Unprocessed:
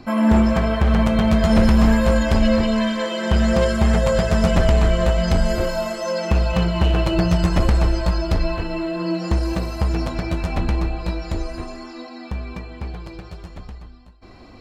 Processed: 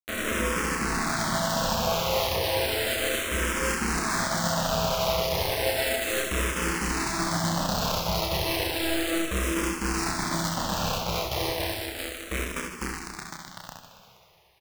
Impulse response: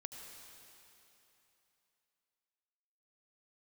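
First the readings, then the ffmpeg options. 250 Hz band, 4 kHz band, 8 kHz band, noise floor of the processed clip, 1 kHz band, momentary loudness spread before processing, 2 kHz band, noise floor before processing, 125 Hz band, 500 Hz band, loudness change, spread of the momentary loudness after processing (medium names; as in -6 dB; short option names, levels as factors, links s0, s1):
-12.5 dB, +2.0 dB, no reading, -52 dBFS, -1.5 dB, 17 LU, 0.0 dB, -42 dBFS, -13.0 dB, -7.0 dB, -7.5 dB, 7 LU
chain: -filter_complex "[0:a]lowshelf=f=140:g=-11.5,areverse,acompressor=threshold=0.0282:ratio=10,areverse,acrusher=bits=4:mix=0:aa=0.000001,aecho=1:1:30|78|154.8|277.7|474.3:0.631|0.398|0.251|0.158|0.1,asplit=2[s0][s1];[1:a]atrim=start_sample=2205,adelay=66[s2];[s1][s2]afir=irnorm=-1:irlink=0,volume=1[s3];[s0][s3]amix=inputs=2:normalize=0,asplit=2[s4][s5];[s5]afreqshift=-0.33[s6];[s4][s6]amix=inputs=2:normalize=1,volume=2"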